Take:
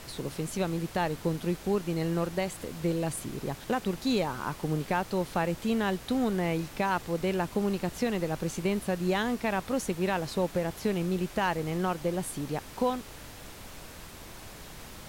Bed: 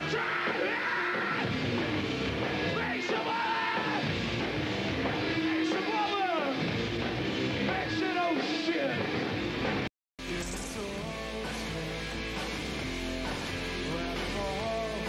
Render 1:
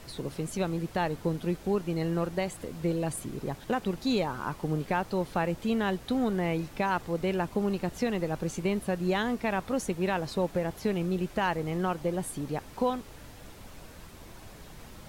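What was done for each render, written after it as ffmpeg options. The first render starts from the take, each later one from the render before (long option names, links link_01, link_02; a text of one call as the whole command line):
ffmpeg -i in.wav -af "afftdn=noise_reduction=6:noise_floor=-46" out.wav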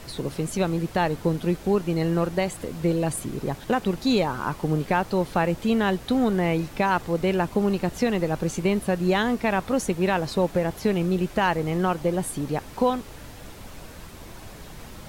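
ffmpeg -i in.wav -af "volume=6dB" out.wav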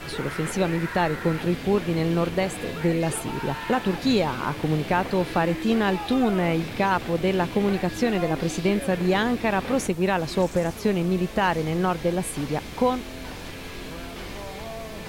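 ffmpeg -i in.wav -i bed.wav -filter_complex "[1:a]volume=-4dB[link_01];[0:a][link_01]amix=inputs=2:normalize=0" out.wav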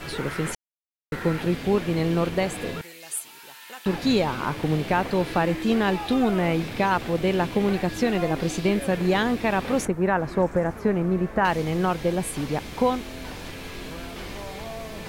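ffmpeg -i in.wav -filter_complex "[0:a]asettb=1/sr,asplit=3[link_01][link_02][link_03];[link_01]atrim=end=2.814[link_04];[link_02]atrim=start=2.81:end=3.86,asetpts=PTS-STARTPTS,afade=type=in:duration=0.004:curve=qsin,afade=type=out:start_time=1.046:duration=0.004:curve=qsin,aderivative[link_05];[link_03]atrim=start=3.856[link_06];[link_04][link_05]acrossfade=duration=0.004:curve1=hsin:curve2=qsin[link_07];[link_07][link_06]acrossfade=duration=0.004:curve1=qsin:curve2=hsin,asettb=1/sr,asplit=3[link_08][link_09][link_10];[link_08]atrim=end=9.854[link_11];[link_09]atrim=start=9.85:end=11.45,asetpts=PTS-STARTPTS,afade=type=in:duration=0.004:curve=qsin,afade=type=out:start_time=1.596:duration=0.004:curve=qsin,highshelf=frequency=2300:width_type=q:width=1.5:gain=-11.5[link_12];[link_10]atrim=start=11.446[link_13];[link_11][link_12]acrossfade=duration=0.004:curve1=hsin:curve2=qsin[link_14];[link_14][link_13]acrossfade=duration=0.004:curve1=qsin:curve2=hsin,asplit=3[link_15][link_16][link_17];[link_15]atrim=end=0.55,asetpts=PTS-STARTPTS,afade=type=out:start_time=0.546:duration=0.004:curve=hsin[link_18];[link_16]atrim=start=0.55:end=1.12,asetpts=PTS-STARTPTS,volume=0[link_19];[link_17]atrim=start=1.12,asetpts=PTS-STARTPTS,afade=type=in:duration=0.004:curve=hsin[link_20];[link_18][link_19][link_20]concat=n=3:v=0:a=1" out.wav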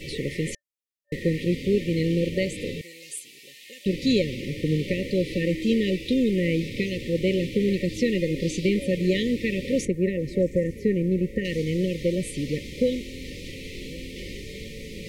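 ffmpeg -i in.wav -filter_complex "[0:a]afftfilt=real='re*(1-between(b*sr/4096,580,1800))':imag='im*(1-between(b*sr/4096,580,1800))':win_size=4096:overlap=0.75,acrossover=split=9400[link_01][link_02];[link_02]acompressor=threshold=-59dB:ratio=4:attack=1:release=60[link_03];[link_01][link_03]amix=inputs=2:normalize=0" out.wav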